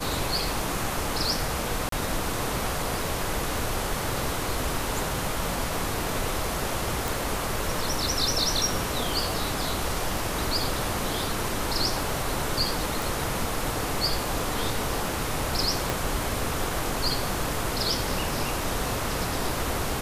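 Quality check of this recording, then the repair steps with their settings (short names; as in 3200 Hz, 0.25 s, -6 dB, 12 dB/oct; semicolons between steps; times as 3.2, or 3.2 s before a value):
1.89–1.92 gap 33 ms
7.08 pop
13.02 pop
15.9 pop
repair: de-click; interpolate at 1.89, 33 ms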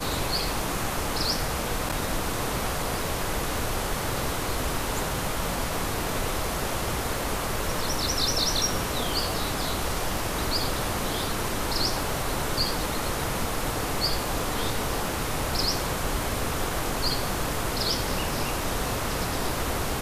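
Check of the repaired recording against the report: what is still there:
15.9 pop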